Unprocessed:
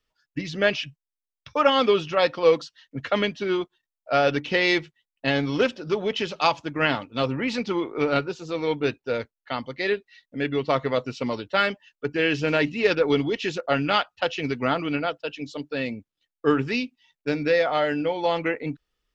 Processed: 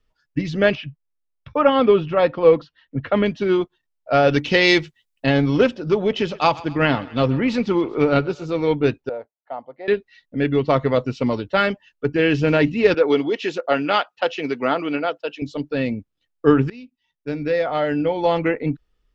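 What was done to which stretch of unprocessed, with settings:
0:00.75–0:03.26: high-frequency loss of the air 270 metres
0:04.31–0:05.26: high-shelf EQ 3,100 Hz +12 dB
0:05.94–0:08.58: feedback echo with a high-pass in the loop 130 ms, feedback 58%, level −19.5 dB
0:09.09–0:09.88: resonant band-pass 710 Hz, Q 3.4
0:12.94–0:15.42: high-pass filter 330 Hz
0:16.70–0:18.30: fade in, from −23.5 dB
whole clip: spectral tilt −2 dB per octave; level +3.5 dB

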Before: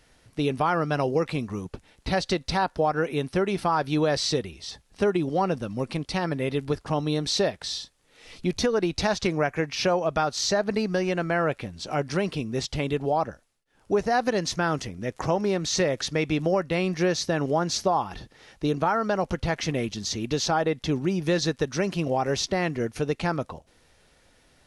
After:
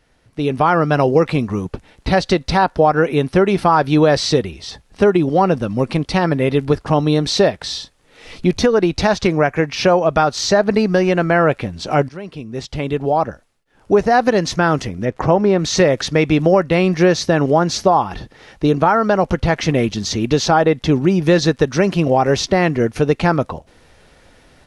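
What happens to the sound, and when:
0:12.09–0:13.92: fade in, from −20.5 dB
0:15.05–0:15.59: low-pass filter 2,300 Hz 6 dB per octave
whole clip: high-shelf EQ 3,600 Hz −7.5 dB; automatic gain control gain up to 11.5 dB; level +1 dB

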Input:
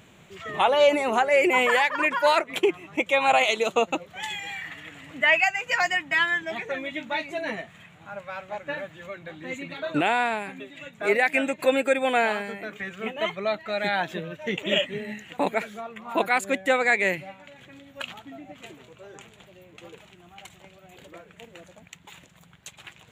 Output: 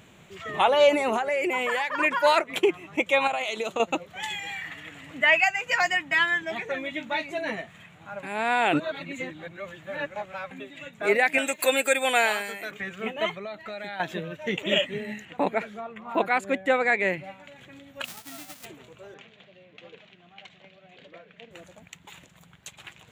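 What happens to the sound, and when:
0:01.16–0:02.00: downward compressor 4 to 1, threshold −23 dBFS
0:03.27–0:03.80: downward compressor, threshold −25 dBFS
0:08.23–0:10.51: reverse
0:11.38–0:12.71: RIAA equalisation recording
0:13.33–0:14.00: downward compressor 4 to 1, threshold −34 dBFS
0:15.25–0:17.24: low-pass filter 2,400 Hz 6 dB per octave
0:18.04–0:18.64: spectral envelope flattened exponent 0.1
0:19.14–0:21.51: loudspeaker in its box 180–4,700 Hz, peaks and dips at 340 Hz −8 dB, 890 Hz −8 dB, 1,300 Hz −5 dB

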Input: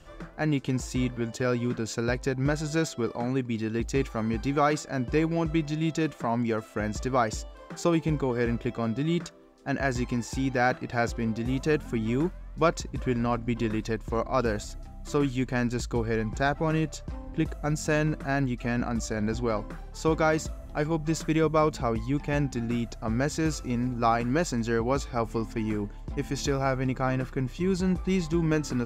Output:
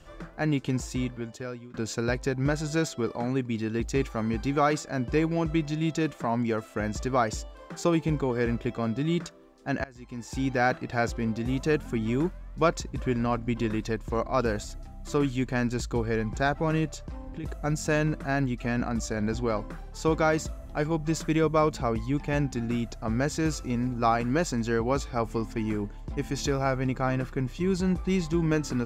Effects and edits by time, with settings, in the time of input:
0:00.78–0:01.74: fade out, to −23.5 dB
0:09.84–0:10.42: fade in quadratic, from −23 dB
0:16.91–0:17.44: downward compressor, threshold −33 dBFS

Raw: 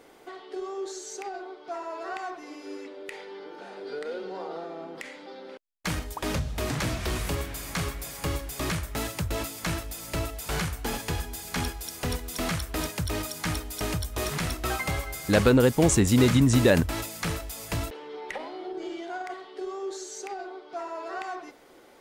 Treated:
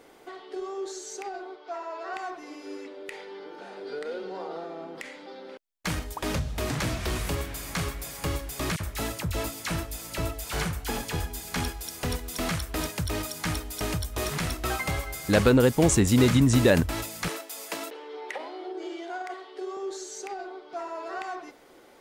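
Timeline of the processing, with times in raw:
0:01.56–0:02.13: band-pass filter 380–6,200 Hz
0:08.76–0:11.41: all-pass dispersion lows, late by 43 ms, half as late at 1,500 Hz
0:17.28–0:19.77: high-pass filter 290 Hz 24 dB per octave

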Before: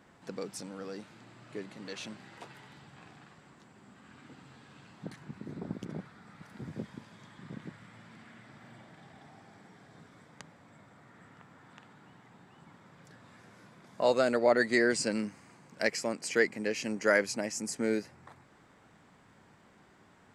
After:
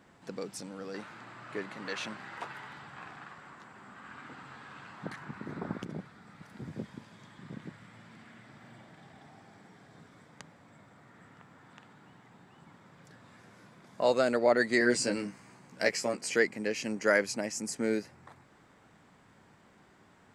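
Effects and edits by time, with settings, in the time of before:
0:00.94–0:05.84: parametric band 1,300 Hz +12 dB 1.9 octaves
0:14.79–0:16.36: double-tracking delay 16 ms −4 dB

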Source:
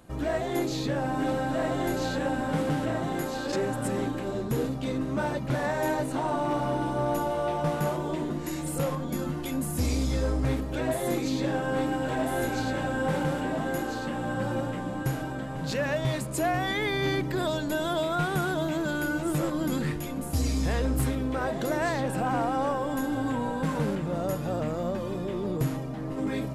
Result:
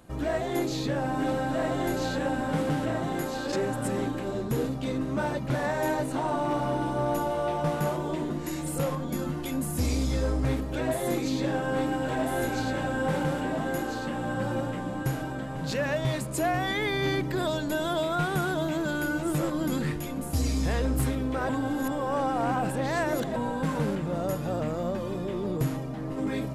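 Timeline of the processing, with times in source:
0:21.49–0:23.36: reverse

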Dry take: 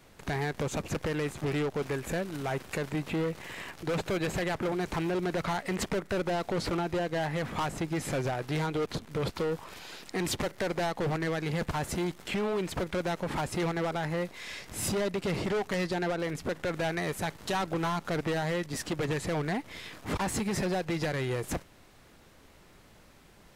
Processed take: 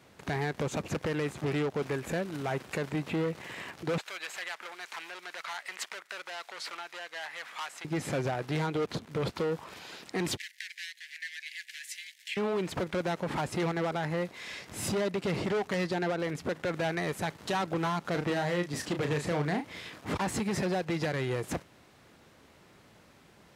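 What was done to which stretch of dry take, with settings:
0:03.98–0:07.85: high-pass filter 1,400 Hz
0:10.37–0:12.37: Butterworth high-pass 1,700 Hz 96 dB per octave
0:18.11–0:19.90: double-tracking delay 34 ms −7 dB
whole clip: high-pass filter 85 Hz; high-shelf EQ 8,500 Hz −6.5 dB

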